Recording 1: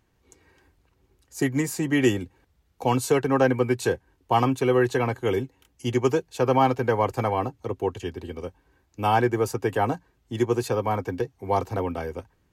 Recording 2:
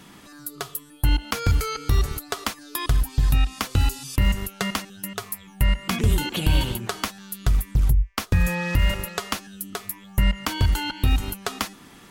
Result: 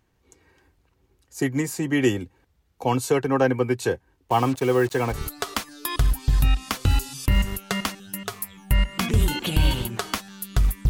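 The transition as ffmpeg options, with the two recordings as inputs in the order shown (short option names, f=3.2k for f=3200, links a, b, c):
-filter_complex "[0:a]asplit=3[a][b][c];[a]afade=t=out:st=4.29:d=0.02[d];[b]acrusher=bits=5:mix=0:aa=0.5,afade=t=in:st=4.29:d=0.02,afade=t=out:st=5.18:d=0.02[e];[c]afade=t=in:st=5.18:d=0.02[f];[d][e][f]amix=inputs=3:normalize=0,apad=whole_dur=10.89,atrim=end=10.89,atrim=end=5.18,asetpts=PTS-STARTPTS[g];[1:a]atrim=start=2:end=7.79,asetpts=PTS-STARTPTS[h];[g][h]acrossfade=d=0.08:c1=tri:c2=tri"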